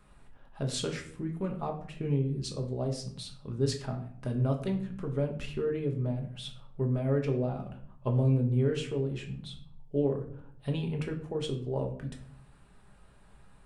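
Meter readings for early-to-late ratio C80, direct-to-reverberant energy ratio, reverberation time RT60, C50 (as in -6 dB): 13.5 dB, 1.5 dB, 0.60 s, 9.5 dB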